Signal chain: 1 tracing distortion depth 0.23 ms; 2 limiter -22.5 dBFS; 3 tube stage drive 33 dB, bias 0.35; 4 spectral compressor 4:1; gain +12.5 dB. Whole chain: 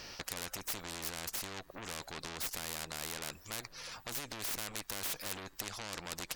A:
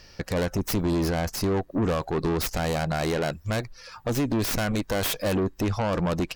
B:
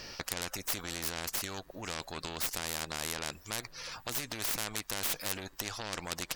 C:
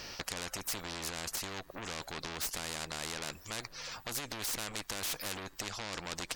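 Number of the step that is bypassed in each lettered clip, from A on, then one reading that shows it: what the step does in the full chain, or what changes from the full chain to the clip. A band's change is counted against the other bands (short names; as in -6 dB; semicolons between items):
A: 4, 8 kHz band -14.5 dB; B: 3, crest factor change +2.0 dB; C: 1, crest factor change -3.0 dB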